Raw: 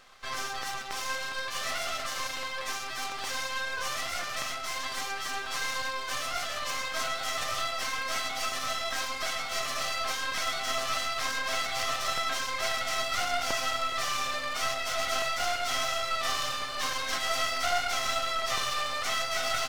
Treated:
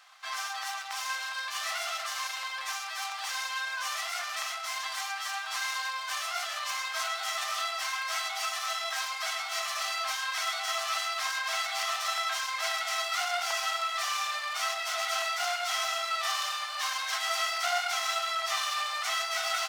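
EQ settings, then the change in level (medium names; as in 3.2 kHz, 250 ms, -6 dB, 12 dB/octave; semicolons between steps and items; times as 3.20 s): steep high-pass 680 Hz 48 dB/octave; 0.0 dB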